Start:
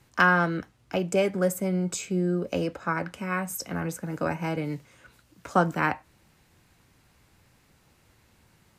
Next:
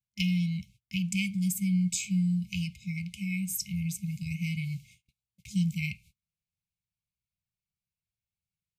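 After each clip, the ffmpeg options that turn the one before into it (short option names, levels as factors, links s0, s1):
-af "afftfilt=real='re*(1-between(b*sr/4096,210,2100))':imag='im*(1-between(b*sr/4096,210,2100))':win_size=4096:overlap=0.75,agate=range=0.02:threshold=0.00178:ratio=16:detection=peak,volume=1.19"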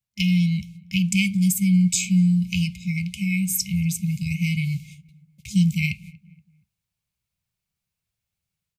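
-filter_complex "[0:a]dynaudnorm=f=170:g=3:m=1.78,asplit=2[s0][s1];[s1]adelay=237,lowpass=f=1400:p=1,volume=0.0891,asplit=2[s2][s3];[s3]adelay=237,lowpass=f=1400:p=1,volume=0.45,asplit=2[s4][s5];[s5]adelay=237,lowpass=f=1400:p=1,volume=0.45[s6];[s0][s2][s4][s6]amix=inputs=4:normalize=0,volume=1.58"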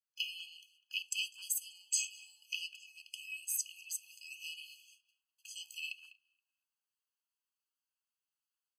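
-filter_complex "[0:a]asplit=2[s0][s1];[s1]adelay=200,highpass=300,lowpass=3400,asoftclip=type=hard:threshold=0.126,volume=0.2[s2];[s0][s2]amix=inputs=2:normalize=0,afftfilt=real='re*eq(mod(floor(b*sr/1024/840),2),1)':imag='im*eq(mod(floor(b*sr/1024/840),2),1)':win_size=1024:overlap=0.75,volume=0.447"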